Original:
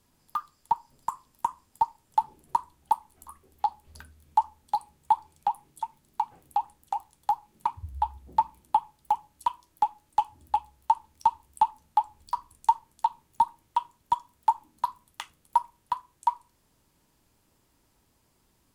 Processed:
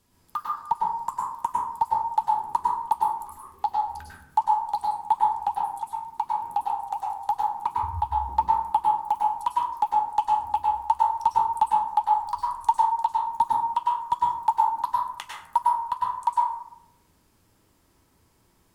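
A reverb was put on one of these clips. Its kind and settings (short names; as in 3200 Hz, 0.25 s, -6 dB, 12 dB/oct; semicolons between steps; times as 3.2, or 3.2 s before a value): plate-style reverb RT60 0.72 s, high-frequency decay 0.45×, pre-delay 90 ms, DRR -3 dB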